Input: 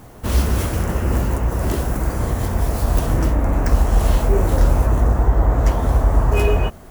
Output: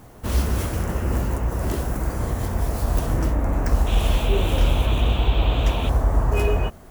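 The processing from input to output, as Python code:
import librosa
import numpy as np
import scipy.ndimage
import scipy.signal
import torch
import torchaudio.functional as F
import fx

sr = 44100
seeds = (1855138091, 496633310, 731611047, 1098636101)

y = fx.dmg_noise_band(x, sr, seeds[0], low_hz=2300.0, high_hz=3700.0, level_db=-32.0, at=(3.86, 5.88), fade=0.02)
y = y * librosa.db_to_amplitude(-4.0)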